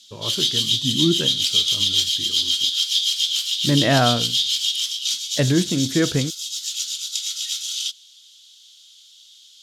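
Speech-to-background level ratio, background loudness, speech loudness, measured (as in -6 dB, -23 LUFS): -2.5 dB, -20.0 LUFS, -22.5 LUFS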